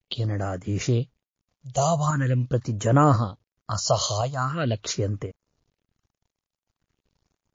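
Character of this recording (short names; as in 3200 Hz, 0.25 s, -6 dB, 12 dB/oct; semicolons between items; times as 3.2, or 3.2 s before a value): phasing stages 4, 0.43 Hz, lowest notch 260–4000 Hz; a quantiser's noise floor 12-bit, dither none; tremolo saw up 0.95 Hz, depth 45%; MP3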